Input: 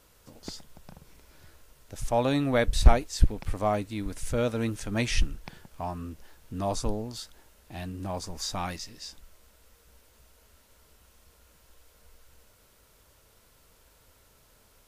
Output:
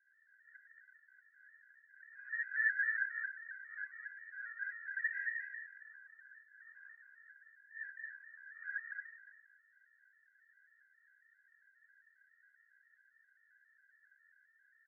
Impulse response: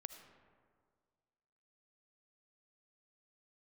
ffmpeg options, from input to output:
-filter_complex "[0:a]asuperpass=centerf=1700:order=8:qfactor=4.9,aecho=1:1:226:0.668,asplit=2[a][b];[1:a]atrim=start_sample=2205,adelay=66[c];[b][c]afir=irnorm=-1:irlink=0,volume=9dB[d];[a][d]amix=inputs=2:normalize=0,afftfilt=real='re*gt(sin(2*PI*3.7*pts/sr)*(1-2*mod(floor(b*sr/1024/240),2)),0)':imag='im*gt(sin(2*PI*3.7*pts/sr)*(1-2*mod(floor(b*sr/1024/240),2)),0)':win_size=1024:overlap=0.75,volume=4.5dB"

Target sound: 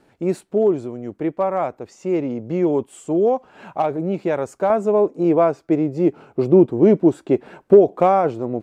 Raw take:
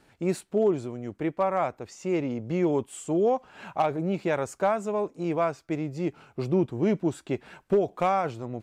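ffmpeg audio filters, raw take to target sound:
-af "asetnsamples=n=441:p=0,asendcmd='4.7 equalizer g 15',equalizer=f=390:t=o:w=3:g=8.5,volume=-2dB"

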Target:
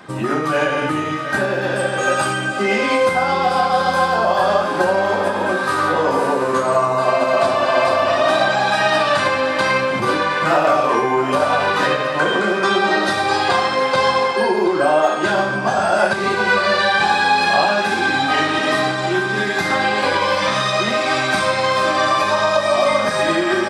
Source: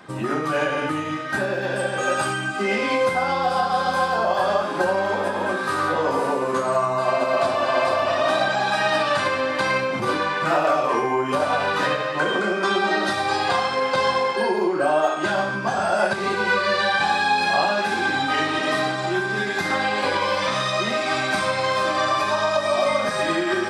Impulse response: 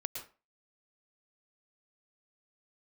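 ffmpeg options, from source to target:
-af "aecho=1:1:721:0.211,volume=4.5dB"

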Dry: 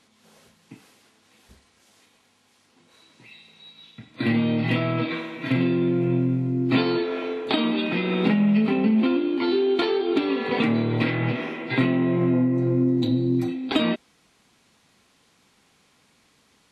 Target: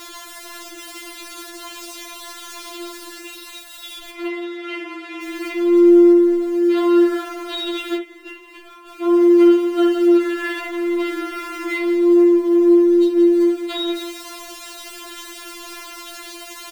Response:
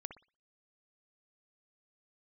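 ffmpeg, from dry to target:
-filter_complex "[0:a]aeval=exprs='val(0)+0.5*0.0335*sgn(val(0))':c=same,asettb=1/sr,asplit=3[a][b][c];[a]atrim=end=4.104[d];[b]atrim=start=4.1:end=5.22,asetpts=PTS-STARTPTS,afade=t=in:d=0.004:c=qsin,afade=t=out:st=1.116:d=0.004:c=qsin,bandpass=f=1.3k:t=q:w=0.59:csg=0[e];[c]atrim=start=5.216[f];[d][e]acrossfade=d=0.004:c1=hsin:c2=qsin[g];[g][f]acrossfade=d=0.004:c1=qsin:c2=hsin,aecho=1:1:170|340|510:0.282|0.0846|0.0254,asplit=3[h][i][j];[h]afade=t=out:st=7.96:d=0.02[k];[i]agate=range=-33dB:threshold=-10dB:ratio=3:detection=peak,afade=t=in:st=7.96:d=0.02,afade=t=out:st=8.87:d=0.02[l];[j]afade=t=in:st=8.87:d=0.02[m];[k][l][m]amix=inputs=3:normalize=0,alimiter=limit=-14dB:level=0:latency=1:release=98[n];[1:a]atrim=start_sample=2205,atrim=end_sample=3969[o];[n][o]afir=irnorm=-1:irlink=0,afftfilt=real='re*4*eq(mod(b,16),0)':imag='im*4*eq(mod(b,16),0)':win_size=2048:overlap=0.75,volume=6dB"

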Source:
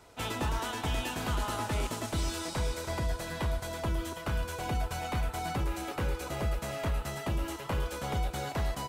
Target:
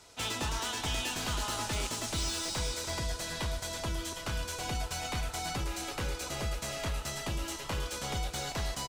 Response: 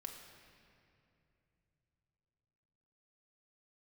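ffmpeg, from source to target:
-filter_complex "[0:a]equalizer=f=5.8k:w=0.51:g=12.5,acrossover=split=3700[a][b];[b]volume=32dB,asoftclip=hard,volume=-32dB[c];[a][c]amix=inputs=2:normalize=0,asplit=6[d][e][f][g][h][i];[e]adelay=347,afreqshift=-35,volume=-18dB[j];[f]adelay=694,afreqshift=-70,volume=-22.7dB[k];[g]adelay=1041,afreqshift=-105,volume=-27.5dB[l];[h]adelay=1388,afreqshift=-140,volume=-32.2dB[m];[i]adelay=1735,afreqshift=-175,volume=-36.9dB[n];[d][j][k][l][m][n]amix=inputs=6:normalize=0,volume=-4dB"

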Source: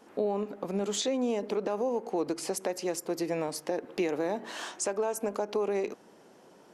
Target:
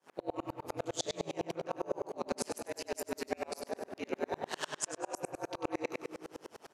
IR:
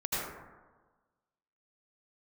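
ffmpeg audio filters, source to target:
-filter_complex "[0:a]highpass=f=930:p=1,areverse,acompressor=threshold=-44dB:ratio=6,areverse,aeval=exprs='val(0)*sin(2*PI*80*n/s)':c=same,asplit=2[a][b];[b]adelay=19,volume=-13dB[c];[a][c]amix=inputs=2:normalize=0,asplit=2[d][e];[e]adelay=95,lowpass=f=3.6k:p=1,volume=-3dB,asplit=2[f][g];[g]adelay=95,lowpass=f=3.6k:p=1,volume=0.51,asplit=2[h][i];[i]adelay=95,lowpass=f=3.6k:p=1,volume=0.51,asplit=2[j][k];[k]adelay=95,lowpass=f=3.6k:p=1,volume=0.51,asplit=2[l][m];[m]adelay=95,lowpass=f=3.6k:p=1,volume=0.51,asplit=2[n][o];[o]adelay=95,lowpass=f=3.6k:p=1,volume=0.51,asplit=2[p][q];[q]adelay=95,lowpass=f=3.6k:p=1,volume=0.51[r];[d][f][h][j][l][n][p][r]amix=inputs=8:normalize=0,asplit=2[s][t];[1:a]atrim=start_sample=2205,lowshelf=f=460:g=8.5,adelay=117[u];[t][u]afir=irnorm=-1:irlink=0,volume=-19dB[v];[s][v]amix=inputs=2:normalize=0,aeval=exprs='val(0)*pow(10,-36*if(lt(mod(-9.9*n/s,1),2*abs(-9.9)/1000),1-mod(-9.9*n/s,1)/(2*abs(-9.9)/1000),(mod(-9.9*n/s,1)-2*abs(-9.9)/1000)/(1-2*abs(-9.9)/1000))/20)':c=same,volume=17.5dB"

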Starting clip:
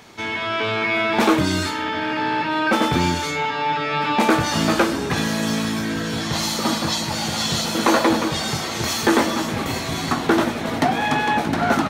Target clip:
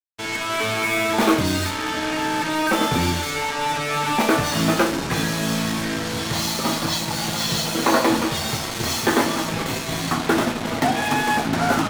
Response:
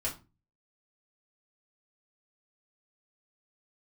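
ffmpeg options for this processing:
-filter_complex "[0:a]acrusher=bits=3:mix=0:aa=0.5,flanger=delay=5.9:depth=3:regen=-62:speed=0.41:shape=sinusoidal,asplit=2[a][b];[1:a]atrim=start_sample=2205,adelay=29[c];[b][c]afir=irnorm=-1:irlink=0,volume=-13dB[d];[a][d]amix=inputs=2:normalize=0,volume=2.5dB"

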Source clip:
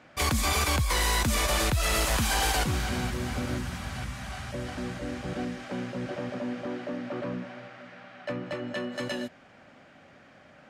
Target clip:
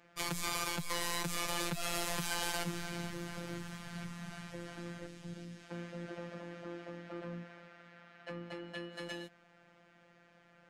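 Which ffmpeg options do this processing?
-filter_complex "[0:a]asettb=1/sr,asplit=3[a][b][c];[a]atrim=end=3.914[d];[b]atrim=start=3.91:end=4.48,asetpts=PTS-STARTPTS,afade=t=in:d=0.004:c=qsin,afade=t=out:st=0.566:d=0.004:c=qsin,equalizer=f=210:w=1.6:g=9[e];[c]atrim=start=4.476[f];[d][e]acrossfade=d=0.004:c1=hsin:c2=qsin[g];[g][f]acrossfade=d=0.004:c1=qsin:c2=hsin,asettb=1/sr,asplit=3[h][i][j];[h]atrim=end=5.064[k];[i]atrim=start=5.06:end=5.71,asetpts=PTS-STARTPTS,afade=t=in:d=0.004:c=qsin,afade=t=out:st=0.646:d=0.004:c=qsin,acrossover=split=270|3000[l][m][n];[m]acompressor=threshold=-47dB:ratio=4[o];[l][o][n]amix=inputs=3:normalize=0[p];[j]atrim=start=5.706[q];[k][p]acrossfade=d=0.004:c1=hsin:c2=qsin[r];[r][q]acrossfade=d=0.004:c1=qsin:c2=hsin,afftfilt=real='hypot(re,im)*cos(PI*b)':imag='0':win_size=1024:overlap=0.75,volume=-6dB"

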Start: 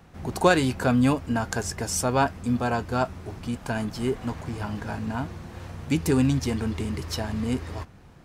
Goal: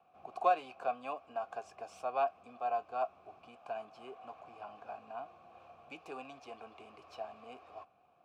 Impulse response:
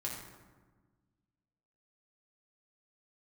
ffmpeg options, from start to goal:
-filter_complex "[0:a]acrossover=split=350|1100|2000[a][b][c][d];[a]acompressor=threshold=-35dB:ratio=6[e];[d]aeval=exprs='0.0562*(abs(mod(val(0)/0.0562+3,4)-2)-1)':c=same[f];[e][b][c][f]amix=inputs=4:normalize=0,aeval=exprs='0.473*(cos(1*acos(clip(val(0)/0.473,-1,1)))-cos(1*PI/2))+0.0473*(cos(3*acos(clip(val(0)/0.473,-1,1)))-cos(3*PI/2))':c=same,asplit=3[g][h][i];[g]bandpass=f=730:t=q:w=8,volume=0dB[j];[h]bandpass=f=1.09k:t=q:w=8,volume=-6dB[k];[i]bandpass=f=2.44k:t=q:w=8,volume=-9dB[l];[j][k][l]amix=inputs=3:normalize=0,volume=1dB"

